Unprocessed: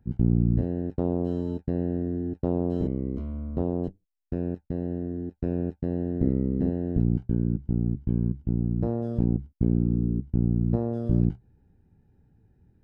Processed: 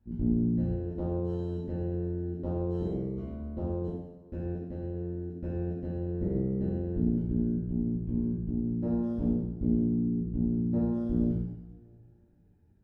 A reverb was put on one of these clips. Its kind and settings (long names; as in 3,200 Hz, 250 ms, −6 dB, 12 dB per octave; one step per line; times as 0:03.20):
coupled-rooms reverb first 0.88 s, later 2.5 s, DRR −8 dB
level −12 dB